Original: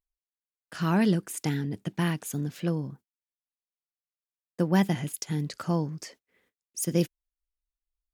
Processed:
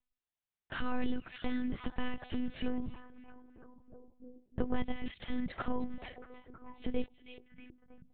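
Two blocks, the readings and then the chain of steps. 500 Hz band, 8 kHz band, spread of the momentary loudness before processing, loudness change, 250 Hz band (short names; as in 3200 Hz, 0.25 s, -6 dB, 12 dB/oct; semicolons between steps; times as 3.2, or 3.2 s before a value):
-9.5 dB, under -40 dB, 12 LU, -11.0 dB, -9.0 dB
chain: delay with a stepping band-pass 0.316 s, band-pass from 2900 Hz, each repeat -0.7 oct, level -12 dB; monotone LPC vocoder at 8 kHz 250 Hz; compressor 2:1, threshold -37 dBFS, peak gain reduction 10.5 dB; gain +2.5 dB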